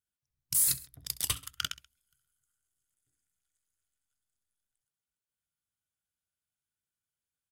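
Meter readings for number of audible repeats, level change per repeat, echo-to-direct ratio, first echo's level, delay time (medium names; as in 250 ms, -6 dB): 2, -4.5 dB, -17.0 dB, -18.5 dB, 66 ms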